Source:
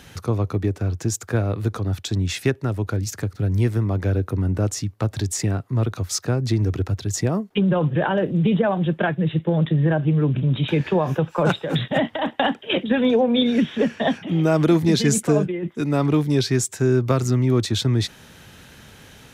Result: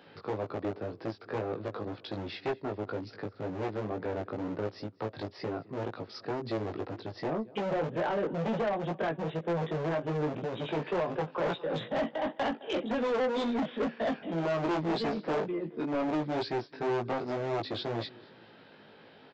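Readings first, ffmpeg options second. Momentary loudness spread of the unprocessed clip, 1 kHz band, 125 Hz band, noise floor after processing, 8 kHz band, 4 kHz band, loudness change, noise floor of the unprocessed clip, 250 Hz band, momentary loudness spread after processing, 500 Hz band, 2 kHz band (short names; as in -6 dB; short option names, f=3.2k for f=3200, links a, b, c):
7 LU, -6.0 dB, -19.5 dB, -56 dBFS, under -30 dB, -13.5 dB, -12.0 dB, -47 dBFS, -13.0 dB, 8 LU, -8.0 dB, -10.0 dB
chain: -filter_complex "[0:a]aresample=11025,aresample=44100,tiltshelf=f=730:g=10,asplit=2[a][b];[b]aecho=0:1:214|428|642:0.0631|0.0297|0.0139[c];[a][c]amix=inputs=2:normalize=0,asoftclip=type=hard:threshold=-9.5dB,highpass=510,flanger=delay=17.5:depth=2.1:speed=2,aresample=16000,asoftclip=type=tanh:threshold=-25.5dB,aresample=44100"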